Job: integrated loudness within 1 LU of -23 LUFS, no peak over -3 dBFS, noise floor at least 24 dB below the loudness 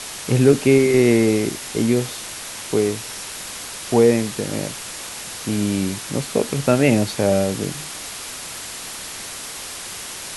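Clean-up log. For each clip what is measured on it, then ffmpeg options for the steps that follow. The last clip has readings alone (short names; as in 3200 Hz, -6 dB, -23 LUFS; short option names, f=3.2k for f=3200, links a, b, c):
noise floor -33 dBFS; noise floor target -45 dBFS; loudness -21.0 LUFS; peak -2.0 dBFS; loudness target -23.0 LUFS
-> -af "afftdn=nr=12:nf=-33"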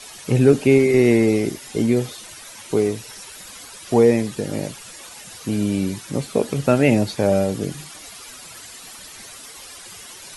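noise floor -40 dBFS; noise floor target -44 dBFS
-> -af "afftdn=nr=6:nf=-40"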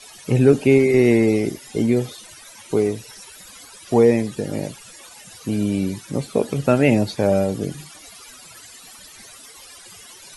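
noise floor -44 dBFS; loudness -19.5 LUFS; peak -2.5 dBFS; loudness target -23.0 LUFS
-> -af "volume=-3.5dB"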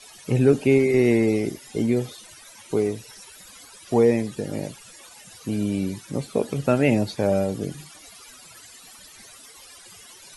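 loudness -23.0 LUFS; peak -6.0 dBFS; noise floor -47 dBFS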